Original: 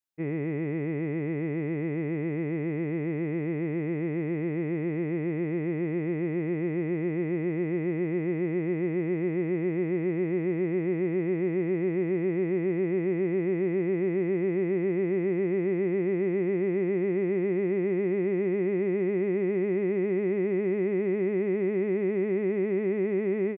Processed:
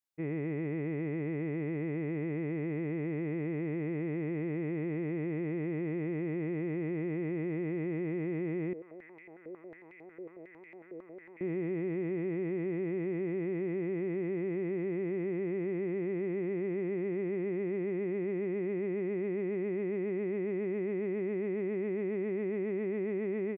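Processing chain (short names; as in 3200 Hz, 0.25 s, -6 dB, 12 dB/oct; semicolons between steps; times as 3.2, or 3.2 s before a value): limiter -24.5 dBFS, peak gain reduction 5.5 dB; 8.73–11.41 stepped band-pass 11 Hz 500–2200 Hz; gain -2.5 dB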